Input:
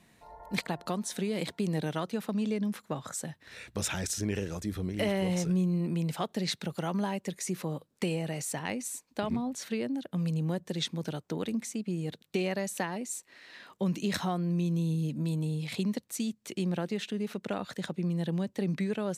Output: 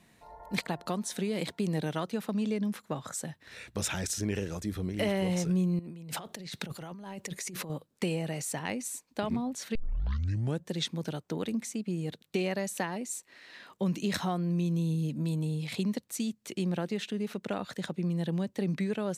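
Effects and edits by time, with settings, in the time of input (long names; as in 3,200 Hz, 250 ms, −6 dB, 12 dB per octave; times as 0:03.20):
0:05.79–0:07.70: compressor whose output falls as the input rises −41 dBFS
0:09.75: tape start 0.91 s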